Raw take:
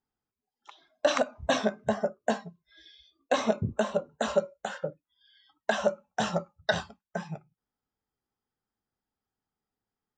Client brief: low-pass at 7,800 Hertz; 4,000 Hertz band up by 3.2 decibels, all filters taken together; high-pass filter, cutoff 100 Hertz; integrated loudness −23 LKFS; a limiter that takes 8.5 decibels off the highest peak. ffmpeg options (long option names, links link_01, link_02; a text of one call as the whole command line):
ffmpeg -i in.wav -af "highpass=100,lowpass=7800,equalizer=frequency=4000:width_type=o:gain=4,volume=11dB,alimiter=limit=-8dB:level=0:latency=1" out.wav